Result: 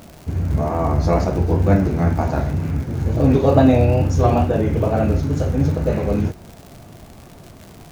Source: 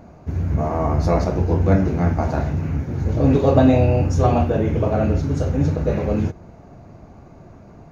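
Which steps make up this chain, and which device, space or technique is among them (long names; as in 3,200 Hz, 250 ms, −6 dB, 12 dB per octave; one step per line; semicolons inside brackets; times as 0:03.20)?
vinyl LP (tape wow and flutter; surface crackle 120 per second −31 dBFS; pink noise bed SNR 34 dB)
level +1 dB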